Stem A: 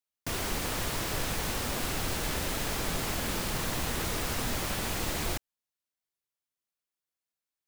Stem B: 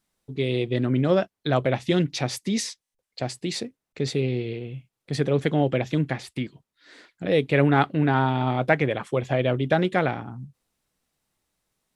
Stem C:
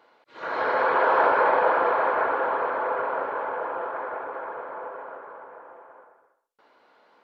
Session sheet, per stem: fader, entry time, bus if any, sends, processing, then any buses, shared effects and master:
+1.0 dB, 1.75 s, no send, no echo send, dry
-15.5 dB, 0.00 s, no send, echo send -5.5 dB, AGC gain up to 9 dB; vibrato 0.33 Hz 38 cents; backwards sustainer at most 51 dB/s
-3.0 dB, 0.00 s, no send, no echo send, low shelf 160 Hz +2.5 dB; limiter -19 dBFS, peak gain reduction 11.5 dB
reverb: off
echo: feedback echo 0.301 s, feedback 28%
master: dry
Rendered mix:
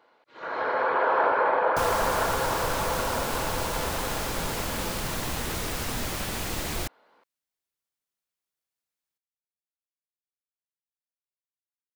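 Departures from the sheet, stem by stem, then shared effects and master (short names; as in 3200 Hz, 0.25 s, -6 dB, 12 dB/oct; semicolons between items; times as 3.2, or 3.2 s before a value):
stem A: entry 1.75 s -> 1.50 s; stem B: muted; stem C: missing limiter -19 dBFS, peak gain reduction 11.5 dB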